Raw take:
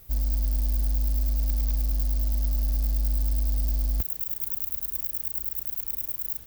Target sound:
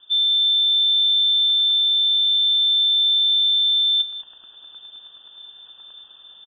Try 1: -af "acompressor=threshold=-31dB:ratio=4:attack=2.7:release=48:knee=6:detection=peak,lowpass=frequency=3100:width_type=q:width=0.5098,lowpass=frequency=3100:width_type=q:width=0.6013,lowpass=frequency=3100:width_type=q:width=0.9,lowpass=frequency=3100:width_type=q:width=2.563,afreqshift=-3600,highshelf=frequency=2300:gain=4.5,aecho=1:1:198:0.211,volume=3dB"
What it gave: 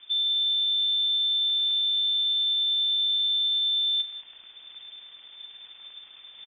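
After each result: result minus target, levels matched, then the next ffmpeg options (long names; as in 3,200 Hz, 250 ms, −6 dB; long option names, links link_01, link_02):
downward compressor: peak gain reduction +9 dB; 2,000 Hz band +8.0 dB
-af "lowpass=frequency=3100:width_type=q:width=0.5098,lowpass=frequency=3100:width_type=q:width=0.6013,lowpass=frequency=3100:width_type=q:width=0.9,lowpass=frequency=3100:width_type=q:width=2.563,afreqshift=-3600,highshelf=frequency=2300:gain=4.5,aecho=1:1:198:0.211,volume=3dB"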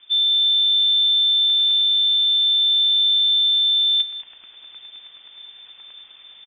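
2,000 Hz band +6.5 dB
-af "lowpass=frequency=3100:width_type=q:width=0.5098,lowpass=frequency=3100:width_type=q:width=0.6013,lowpass=frequency=3100:width_type=q:width=0.9,lowpass=frequency=3100:width_type=q:width=2.563,afreqshift=-3600,asuperstop=centerf=2200:order=4:qfactor=1.7,highshelf=frequency=2300:gain=4.5,aecho=1:1:198:0.211,volume=3dB"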